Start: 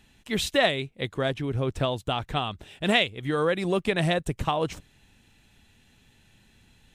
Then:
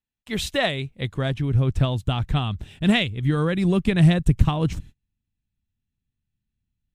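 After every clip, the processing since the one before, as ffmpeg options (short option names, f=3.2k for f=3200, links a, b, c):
-af "agate=range=-34dB:threshold=-51dB:ratio=16:detection=peak,asubboost=boost=7.5:cutoff=210"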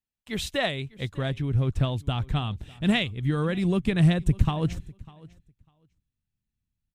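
-af "aecho=1:1:599|1198:0.0794|0.0119,volume=-4dB"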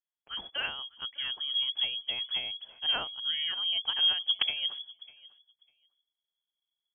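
-filter_complex "[0:a]acrossover=split=210[a][b];[a]aeval=exprs='(mod(4.22*val(0)+1,2)-1)/4.22':c=same[c];[c][b]amix=inputs=2:normalize=0,lowpass=f=2.9k:t=q:w=0.5098,lowpass=f=2.9k:t=q:w=0.6013,lowpass=f=2.9k:t=q:w=0.9,lowpass=f=2.9k:t=q:w=2.563,afreqshift=-3400,volume=-7dB"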